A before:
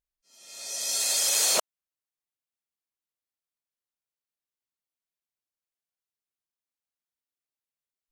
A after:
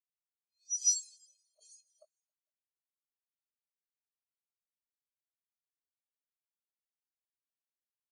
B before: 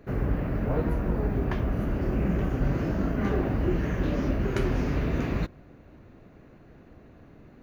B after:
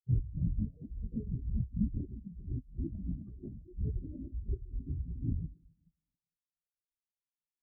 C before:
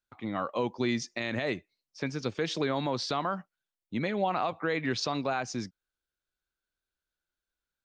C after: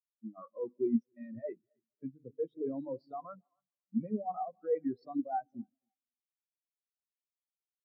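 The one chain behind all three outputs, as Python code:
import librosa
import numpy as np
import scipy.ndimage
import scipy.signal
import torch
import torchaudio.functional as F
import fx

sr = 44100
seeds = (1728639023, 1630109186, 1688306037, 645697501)

y = fx.reverse_delay_fb(x, sr, ms=226, feedback_pct=56, wet_db=-13.0)
y = fx.hum_notches(y, sr, base_hz=50, count=9)
y = fx.over_compress(y, sr, threshold_db=-29.0, ratio=-0.5)
y = fx.echo_feedback(y, sr, ms=272, feedback_pct=51, wet_db=-11.5)
y = fx.spectral_expand(y, sr, expansion=4.0)
y = y * librosa.db_to_amplitude(-3.0)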